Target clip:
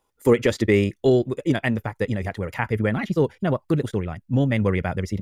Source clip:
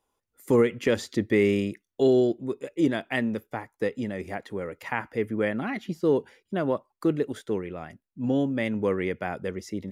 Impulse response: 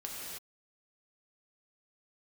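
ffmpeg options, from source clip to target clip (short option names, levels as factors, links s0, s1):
-af "asubboost=boost=7:cutoff=110,atempo=1.9,volume=1.88"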